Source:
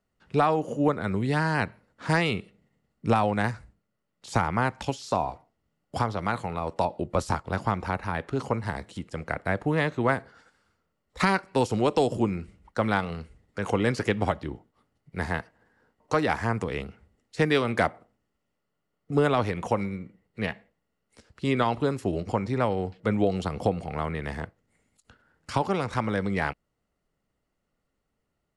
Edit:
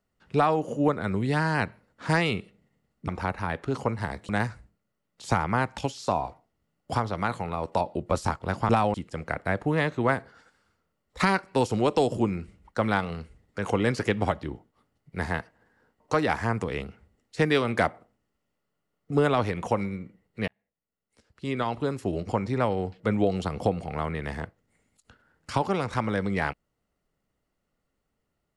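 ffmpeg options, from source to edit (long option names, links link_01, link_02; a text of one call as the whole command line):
ffmpeg -i in.wav -filter_complex "[0:a]asplit=6[link_01][link_02][link_03][link_04][link_05][link_06];[link_01]atrim=end=3.082[link_07];[link_02]atrim=start=7.728:end=8.942[link_08];[link_03]atrim=start=3.328:end=7.732[link_09];[link_04]atrim=start=3.078:end=3.332[link_10];[link_05]atrim=start=8.938:end=20.48,asetpts=PTS-STARTPTS,afade=type=out:start_time=11.538:duration=0.004:curve=hsin[link_11];[link_06]atrim=start=20.48,asetpts=PTS-STARTPTS,afade=type=in:duration=1.83[link_12];[link_07][link_08]acrossfade=duration=0.004:curve1=hsin:curve2=hsin[link_13];[link_13][link_09]acrossfade=duration=0.004:curve1=hsin:curve2=hsin[link_14];[link_14][link_10]acrossfade=duration=0.004:curve1=hsin:curve2=hsin[link_15];[link_11][link_12]concat=n=2:v=0:a=1[link_16];[link_15][link_16]acrossfade=duration=0.004:curve1=hsin:curve2=hsin" out.wav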